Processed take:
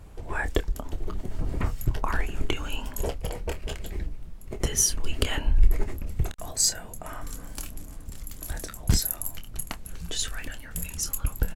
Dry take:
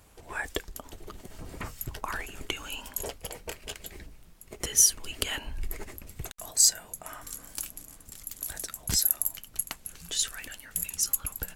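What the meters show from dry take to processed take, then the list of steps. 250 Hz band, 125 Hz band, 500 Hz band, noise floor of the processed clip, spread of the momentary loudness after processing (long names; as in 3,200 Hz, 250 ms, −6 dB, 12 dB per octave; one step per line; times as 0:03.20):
+9.5 dB, +13.5 dB, +7.0 dB, −42 dBFS, 15 LU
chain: spectral tilt −2.5 dB per octave
double-tracking delay 27 ms −10.5 dB
level +4 dB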